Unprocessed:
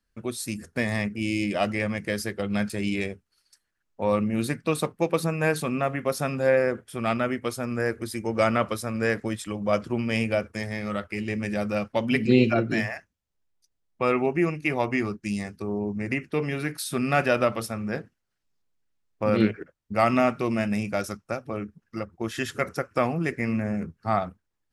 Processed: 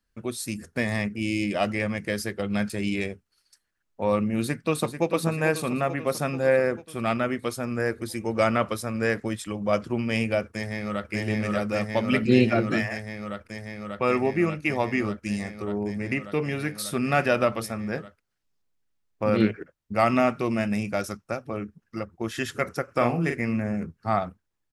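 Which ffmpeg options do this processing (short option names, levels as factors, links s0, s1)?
-filter_complex "[0:a]asplit=2[s0][s1];[s1]afade=t=in:st=4.38:d=0.01,afade=t=out:st=5.09:d=0.01,aecho=0:1:440|880|1320|1760|2200|2640|3080|3520|3960:0.334965|0.217728|0.141523|0.0919899|0.0597934|0.0388657|0.0252627|0.0164208|0.0106735[s2];[s0][s2]amix=inputs=2:normalize=0,asplit=2[s3][s4];[s4]afade=t=in:st=10.45:d=0.01,afade=t=out:st=11.11:d=0.01,aecho=0:1:590|1180|1770|2360|2950|3540|4130|4720|5310|5900|6490|7080:1|0.85|0.7225|0.614125|0.522006|0.443705|0.37715|0.320577|0.272491|0.231617|0.196874|0.167343[s5];[s3][s5]amix=inputs=2:normalize=0,asplit=3[s6][s7][s8];[s6]afade=t=out:st=22.87:d=0.02[s9];[s7]asplit=2[s10][s11];[s11]adelay=42,volume=0.562[s12];[s10][s12]amix=inputs=2:normalize=0,afade=t=in:st=22.87:d=0.02,afade=t=out:st=23.37:d=0.02[s13];[s8]afade=t=in:st=23.37:d=0.02[s14];[s9][s13][s14]amix=inputs=3:normalize=0"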